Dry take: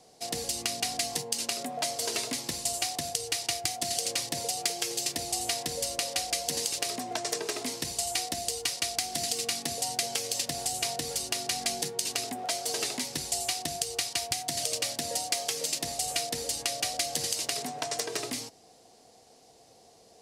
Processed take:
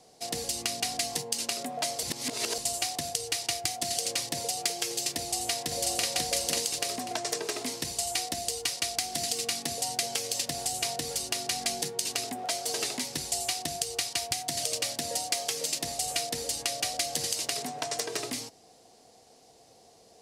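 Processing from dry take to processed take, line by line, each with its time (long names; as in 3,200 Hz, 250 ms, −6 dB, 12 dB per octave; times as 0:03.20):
0:02.03–0:02.58: reverse
0:05.17–0:06.04: delay throw 540 ms, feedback 25%, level −1 dB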